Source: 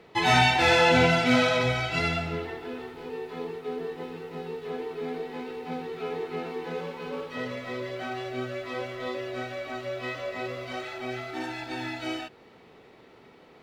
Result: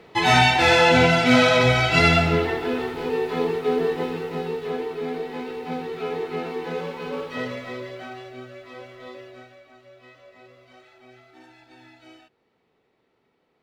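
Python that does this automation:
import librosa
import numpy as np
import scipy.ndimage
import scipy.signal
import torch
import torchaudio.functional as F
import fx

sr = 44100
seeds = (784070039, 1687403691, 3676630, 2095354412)

y = fx.gain(x, sr, db=fx.line((1.12, 4.0), (2.19, 11.5), (3.9, 11.5), (5.0, 4.5), (7.4, 4.5), (8.44, -7.0), (9.2, -7.0), (9.68, -16.0)))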